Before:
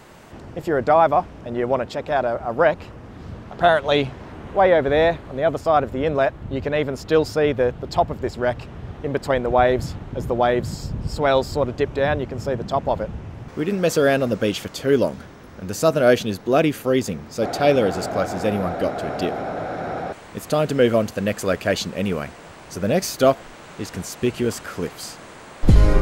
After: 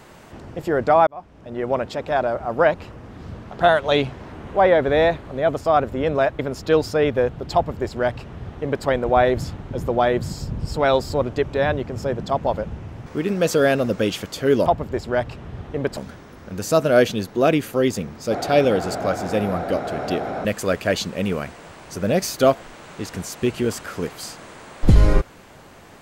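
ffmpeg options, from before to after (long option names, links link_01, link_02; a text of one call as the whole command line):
ffmpeg -i in.wav -filter_complex "[0:a]asplit=6[link_01][link_02][link_03][link_04][link_05][link_06];[link_01]atrim=end=1.07,asetpts=PTS-STARTPTS,afade=type=out:start_time=1.066:duration=0.004:curve=hsin[link_07];[link_02]atrim=start=1.07:end=6.392,asetpts=PTS-STARTPTS,afade=type=in:duration=0.76[link_08];[link_03]atrim=start=6.808:end=15.082[link_09];[link_04]atrim=start=7.958:end=9.272[link_10];[link_05]atrim=start=15.078:end=19.562[link_11];[link_06]atrim=start=21.248[link_12];[link_07][link_08]concat=n=2:v=0:a=1[link_13];[link_13][link_09]acrossfade=duration=0.004:curve1=hsin:curve2=hsin[link_14];[link_14][link_10]acrossfade=duration=0.004:curve1=hsin:curve2=hsin[link_15];[link_15][link_11]acrossfade=duration=0.004:curve1=hsin:curve2=hsin[link_16];[link_16][link_12]acrossfade=duration=0.004:curve1=hsin:curve2=hsin" out.wav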